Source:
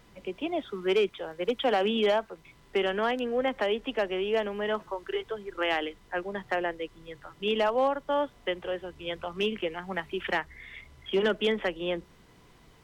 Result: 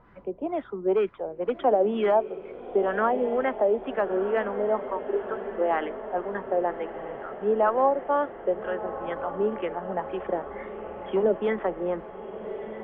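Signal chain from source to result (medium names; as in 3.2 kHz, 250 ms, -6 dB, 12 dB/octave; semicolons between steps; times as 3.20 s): LFO low-pass sine 2.1 Hz 550–1600 Hz; echo that smears into a reverb 1289 ms, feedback 63%, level -11.5 dB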